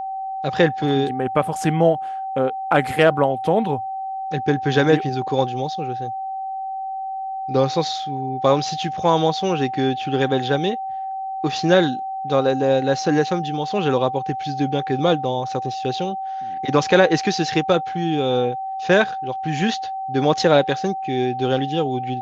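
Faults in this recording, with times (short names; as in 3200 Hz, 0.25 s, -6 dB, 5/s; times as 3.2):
tone 770 Hz -25 dBFS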